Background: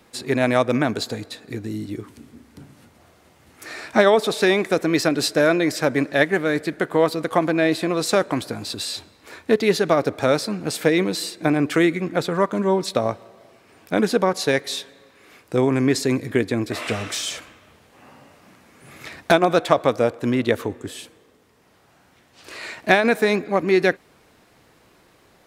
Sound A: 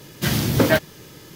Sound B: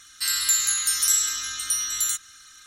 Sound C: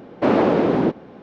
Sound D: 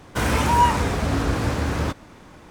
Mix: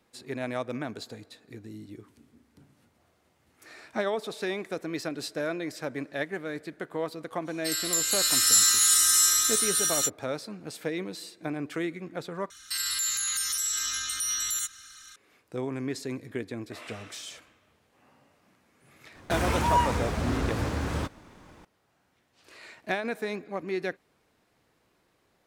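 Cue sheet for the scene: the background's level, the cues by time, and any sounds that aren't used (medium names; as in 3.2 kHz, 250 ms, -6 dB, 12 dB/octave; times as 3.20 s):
background -14 dB
7.44 s: add B -6.5 dB, fades 0.05 s + swelling reverb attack 710 ms, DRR -8.5 dB
12.50 s: replace with B -0.5 dB + peak limiter -20 dBFS
19.15 s: add D -6.5 dB
not used: A, C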